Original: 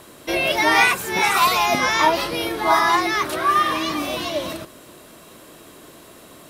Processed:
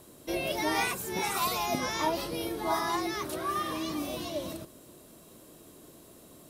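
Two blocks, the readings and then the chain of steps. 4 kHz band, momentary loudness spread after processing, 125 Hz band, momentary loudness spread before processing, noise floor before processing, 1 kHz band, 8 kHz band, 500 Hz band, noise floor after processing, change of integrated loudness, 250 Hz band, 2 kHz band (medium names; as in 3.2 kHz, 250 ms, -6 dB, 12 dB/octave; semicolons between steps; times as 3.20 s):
-12.5 dB, 7 LU, -6.0 dB, 9 LU, -46 dBFS, -13.5 dB, -8.0 dB, -9.5 dB, -54 dBFS, -12.5 dB, -7.0 dB, -16.0 dB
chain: peaking EQ 1.8 kHz -11 dB 2.7 oct; trim -5.5 dB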